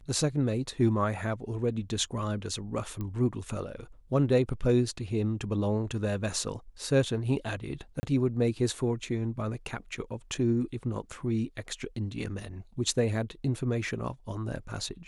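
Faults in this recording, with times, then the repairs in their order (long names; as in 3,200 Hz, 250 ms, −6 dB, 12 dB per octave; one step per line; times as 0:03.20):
0:03.01: click −24 dBFS
0:08.00–0:08.03: drop-out 30 ms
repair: click removal
repair the gap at 0:08.00, 30 ms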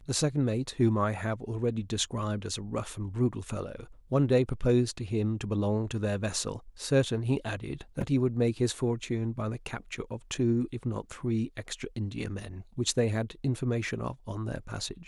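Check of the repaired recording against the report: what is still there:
none of them is left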